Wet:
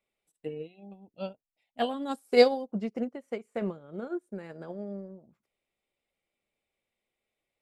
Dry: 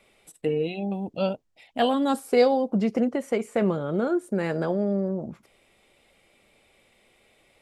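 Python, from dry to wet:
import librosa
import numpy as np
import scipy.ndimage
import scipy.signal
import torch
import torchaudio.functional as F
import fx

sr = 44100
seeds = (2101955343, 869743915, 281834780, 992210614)

y = fx.high_shelf(x, sr, hz=3600.0, db=7.0, at=(2.11, 2.67))
y = fx.upward_expand(y, sr, threshold_db=-32.0, expansion=2.5)
y = F.gain(torch.from_numpy(y), 1.5).numpy()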